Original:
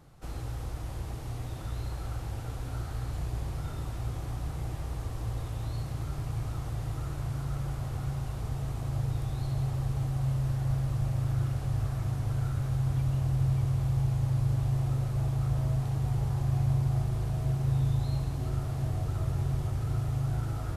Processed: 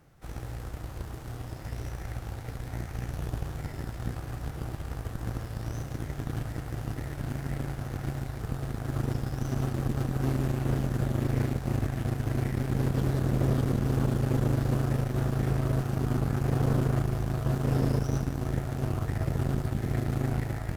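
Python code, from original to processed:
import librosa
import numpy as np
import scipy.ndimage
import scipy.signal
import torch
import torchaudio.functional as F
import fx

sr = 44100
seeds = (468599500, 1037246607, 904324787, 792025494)

y = fx.cheby_harmonics(x, sr, harmonics=(2, 3, 4, 7), levels_db=(-20, -17, -20, -30), full_scale_db=-17.0)
y = fx.formant_shift(y, sr, semitones=6)
y = np.clip(10.0 ** (24.5 / 20.0) * y, -1.0, 1.0) / 10.0 ** (24.5 / 20.0)
y = y * 10.0 ** (5.5 / 20.0)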